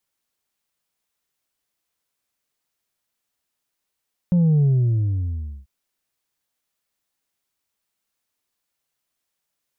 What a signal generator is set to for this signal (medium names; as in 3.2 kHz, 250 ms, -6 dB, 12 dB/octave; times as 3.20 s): sub drop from 180 Hz, over 1.34 s, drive 2.5 dB, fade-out 1.03 s, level -14 dB